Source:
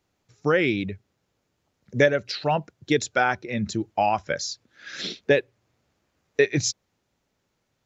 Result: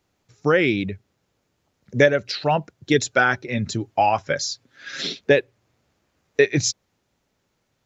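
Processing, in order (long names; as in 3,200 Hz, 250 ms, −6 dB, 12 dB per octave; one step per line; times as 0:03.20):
0:02.93–0:05.19: comb filter 7.4 ms, depth 50%
level +3 dB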